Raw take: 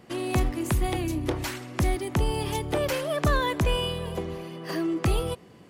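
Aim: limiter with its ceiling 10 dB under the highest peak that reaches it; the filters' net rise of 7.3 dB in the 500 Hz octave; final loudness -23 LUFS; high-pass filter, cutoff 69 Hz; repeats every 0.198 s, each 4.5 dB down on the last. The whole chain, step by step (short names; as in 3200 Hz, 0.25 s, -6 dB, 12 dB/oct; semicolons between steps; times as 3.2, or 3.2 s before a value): HPF 69 Hz; bell 500 Hz +9 dB; limiter -18.5 dBFS; feedback echo 0.198 s, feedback 60%, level -4.5 dB; gain +3 dB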